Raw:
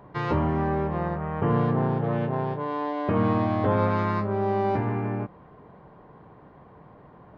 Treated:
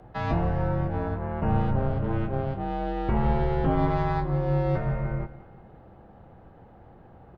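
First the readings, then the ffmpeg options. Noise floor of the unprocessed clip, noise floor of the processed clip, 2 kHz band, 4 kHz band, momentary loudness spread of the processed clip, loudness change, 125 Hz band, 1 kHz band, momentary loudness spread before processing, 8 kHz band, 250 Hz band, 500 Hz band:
−51 dBFS, −51 dBFS, −3.0 dB, −1.5 dB, 6 LU, −1.5 dB, +1.0 dB, −2.5 dB, 6 LU, can't be measured, −3.0 dB, −3.0 dB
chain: -af "bandreject=frequency=50:width_type=h:width=6,bandreject=frequency=100:width_type=h:width=6,bandreject=frequency=150:width_type=h:width=6,afreqshift=-250,aecho=1:1:177|354|531|708:0.15|0.0673|0.0303|0.0136"

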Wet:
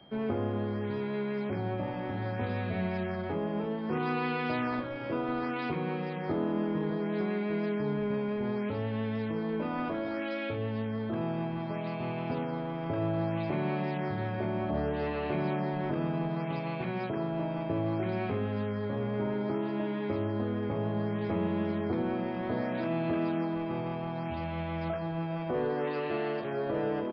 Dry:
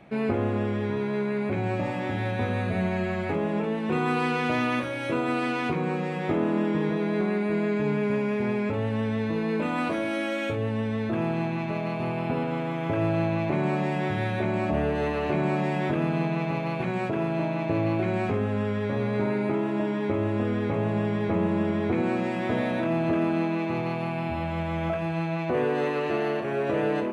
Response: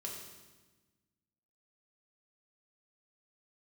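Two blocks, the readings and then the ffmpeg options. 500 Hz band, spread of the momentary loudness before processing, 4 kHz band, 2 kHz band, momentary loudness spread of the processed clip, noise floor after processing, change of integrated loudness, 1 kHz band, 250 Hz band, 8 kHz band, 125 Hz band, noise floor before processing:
−5.5 dB, 3 LU, −6.0 dB, −7.5 dB, 3 LU, −35 dBFS, −5.5 dB, −5.5 dB, −5.5 dB, can't be measured, −5.5 dB, −30 dBFS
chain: -filter_complex "[0:a]acrossover=split=130|480|2200[link_01][link_02][link_03][link_04];[link_04]acrusher=samples=12:mix=1:aa=0.000001:lfo=1:lforange=19.2:lforate=0.64[link_05];[link_01][link_02][link_03][link_05]amix=inputs=4:normalize=0,aeval=exprs='val(0)+0.00224*sin(2*PI*3200*n/s)':channel_layout=same,aresample=11025,aresample=44100,volume=-5.5dB"

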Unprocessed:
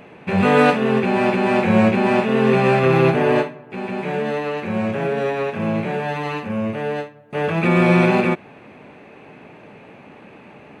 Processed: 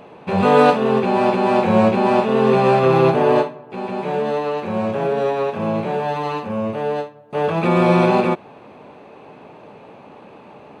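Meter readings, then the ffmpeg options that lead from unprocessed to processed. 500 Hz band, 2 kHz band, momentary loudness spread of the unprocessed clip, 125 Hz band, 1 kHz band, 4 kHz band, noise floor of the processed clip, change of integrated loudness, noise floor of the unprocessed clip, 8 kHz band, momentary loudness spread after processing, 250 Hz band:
+2.0 dB, −4.5 dB, 11 LU, −1.5 dB, +3.5 dB, 0.0 dB, −43 dBFS, +1.0 dB, −44 dBFS, can't be measured, 10 LU, −1.0 dB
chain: -af "equalizer=frequency=500:width_type=o:width=1:gain=4,equalizer=frequency=1000:width_type=o:width=1:gain=7,equalizer=frequency=2000:width_type=o:width=1:gain=-7,equalizer=frequency=4000:width_type=o:width=1:gain=5,volume=-2dB"

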